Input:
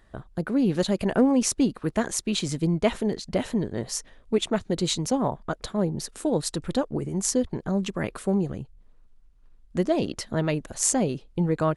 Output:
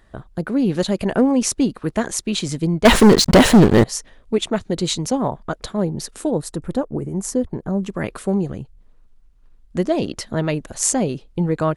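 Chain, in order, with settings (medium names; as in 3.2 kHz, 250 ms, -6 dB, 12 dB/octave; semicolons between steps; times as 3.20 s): 2.85–3.84 s: waveshaping leveller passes 5; 6.31–7.90 s: peaking EQ 3.9 kHz -11 dB 2.3 oct; trim +4 dB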